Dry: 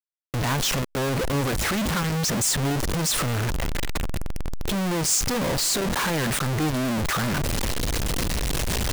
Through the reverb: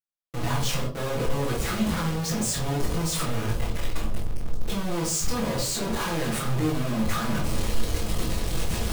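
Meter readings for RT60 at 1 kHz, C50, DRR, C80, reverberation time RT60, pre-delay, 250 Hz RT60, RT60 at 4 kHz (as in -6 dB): 0.45 s, 5.5 dB, -9.5 dB, 11.0 dB, 0.55 s, 6 ms, 0.55 s, 0.35 s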